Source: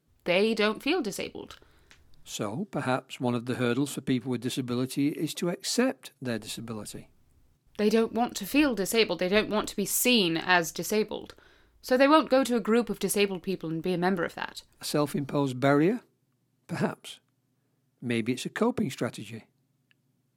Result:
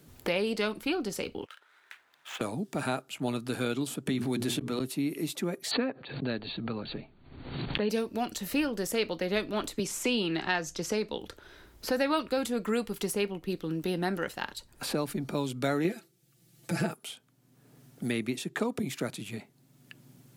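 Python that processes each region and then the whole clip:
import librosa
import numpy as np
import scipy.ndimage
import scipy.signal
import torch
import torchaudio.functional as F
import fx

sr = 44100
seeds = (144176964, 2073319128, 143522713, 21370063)

y = fx.chain(x, sr, fx.median_filter(points=9),
    fx.highpass(hz=1400.0, slope=12),
    fx.high_shelf(hz=4700.0, db=-10.5), at=(1.45, 2.41))
y = fx.chain(y, sr, fx.hum_notches(base_hz=60, count=7),
    fx.auto_swell(attack_ms=445.0),
    fx.env_flatten(amount_pct=70), at=(4.06, 4.8))
y = fx.chain(y, sr, fx.brickwall_lowpass(high_hz=4600.0),
    fx.pre_swell(db_per_s=63.0), at=(5.71, 7.9))
y = fx.chain(y, sr, fx.lowpass(hz=7600.0, slope=12),
    fx.band_squash(depth_pct=40), at=(9.79, 11.18))
y = fx.chain(y, sr, fx.notch(hz=1000.0, q=5.1),
    fx.comb(ms=5.9, depth=0.83), at=(15.84, 16.93))
y = fx.high_shelf(y, sr, hz=7200.0, db=4.0)
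y = fx.notch(y, sr, hz=1100.0, q=23.0)
y = fx.band_squash(y, sr, depth_pct=70)
y = y * 10.0 ** (-4.5 / 20.0)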